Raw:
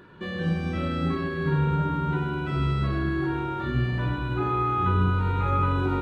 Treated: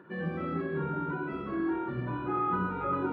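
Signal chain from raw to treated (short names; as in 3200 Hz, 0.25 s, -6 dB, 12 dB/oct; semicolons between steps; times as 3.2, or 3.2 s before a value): plain phase-vocoder stretch 0.52×; three-band isolator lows -19 dB, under 150 Hz, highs -20 dB, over 2100 Hz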